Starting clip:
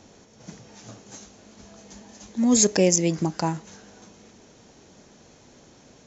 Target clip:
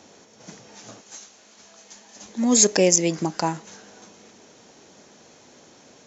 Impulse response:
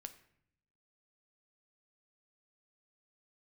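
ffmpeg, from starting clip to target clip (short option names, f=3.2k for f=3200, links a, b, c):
-af "asetnsamples=n=441:p=0,asendcmd='1.01 highpass f 1200;2.16 highpass f 320',highpass=f=340:p=1,volume=3.5dB"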